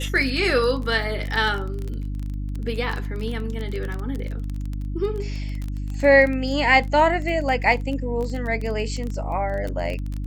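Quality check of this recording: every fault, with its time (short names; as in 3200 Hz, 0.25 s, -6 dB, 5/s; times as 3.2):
crackle 21/s -26 dBFS
hum 50 Hz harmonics 6 -28 dBFS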